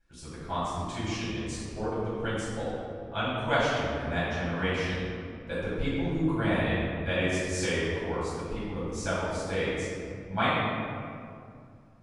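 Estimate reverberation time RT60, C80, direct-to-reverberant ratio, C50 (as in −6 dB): 2.4 s, −0.5 dB, −12.0 dB, −3.0 dB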